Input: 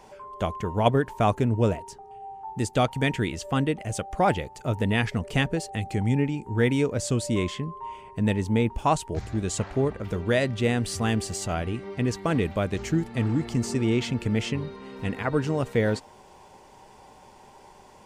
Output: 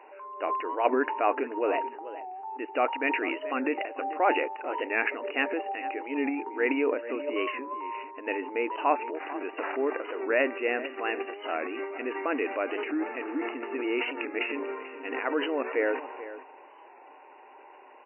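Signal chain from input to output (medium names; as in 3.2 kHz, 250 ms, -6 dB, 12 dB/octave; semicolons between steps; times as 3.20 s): tilt EQ +1.5 dB/octave; transient shaper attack -3 dB, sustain +10 dB; brick-wall FIR band-pass 260–2900 Hz; echo from a far wall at 75 m, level -14 dB; warped record 45 rpm, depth 100 cents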